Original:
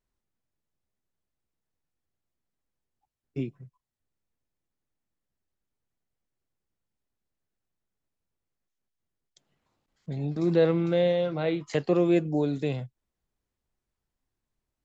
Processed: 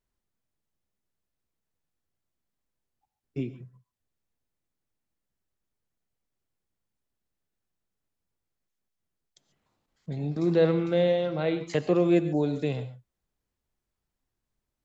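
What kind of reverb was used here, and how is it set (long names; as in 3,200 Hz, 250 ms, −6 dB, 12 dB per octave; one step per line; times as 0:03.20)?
reverb whose tail is shaped and stops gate 160 ms rising, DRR 12 dB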